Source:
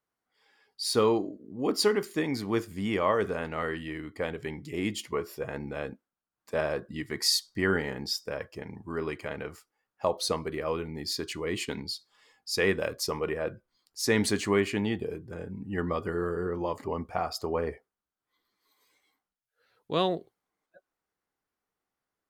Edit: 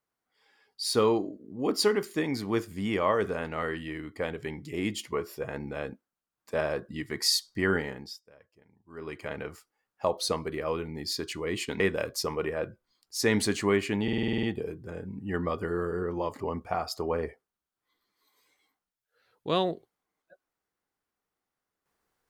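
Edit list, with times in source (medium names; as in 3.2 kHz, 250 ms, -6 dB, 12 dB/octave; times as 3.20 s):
7.77–9.30 s: dip -22 dB, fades 0.44 s
11.80–12.64 s: delete
14.87 s: stutter 0.05 s, 9 plays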